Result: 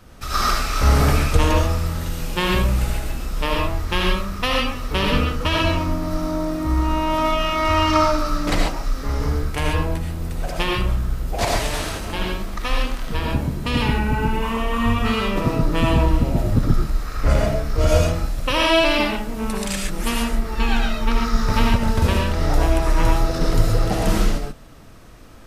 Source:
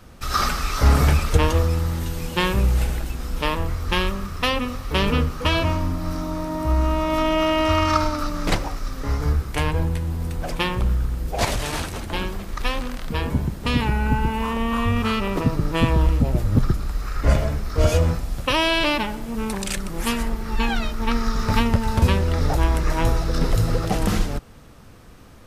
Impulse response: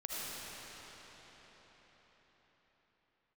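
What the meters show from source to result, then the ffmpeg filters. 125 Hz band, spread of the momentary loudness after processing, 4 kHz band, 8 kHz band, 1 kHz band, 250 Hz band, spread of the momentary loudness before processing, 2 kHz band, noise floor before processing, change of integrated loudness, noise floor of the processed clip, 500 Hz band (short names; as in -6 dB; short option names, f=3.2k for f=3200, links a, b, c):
0.0 dB, 8 LU, +2.0 dB, +2.0 dB, +2.0 dB, +1.5 dB, 9 LU, +2.0 dB, -39 dBFS, +1.5 dB, -31 dBFS, +2.0 dB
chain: -filter_complex "[1:a]atrim=start_sample=2205,atrim=end_sample=6615[a];[0:a][a]afir=irnorm=-1:irlink=0,volume=3.5dB"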